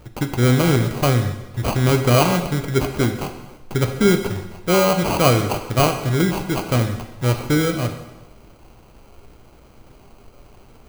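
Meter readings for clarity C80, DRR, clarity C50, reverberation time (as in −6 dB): 10.0 dB, 6.0 dB, 9.0 dB, 1.1 s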